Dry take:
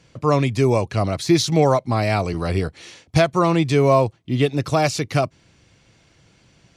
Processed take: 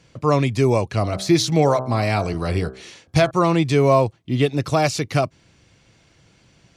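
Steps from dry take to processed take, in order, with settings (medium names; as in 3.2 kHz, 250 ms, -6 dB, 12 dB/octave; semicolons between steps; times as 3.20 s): 1.00–3.31 s: de-hum 64.43 Hz, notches 26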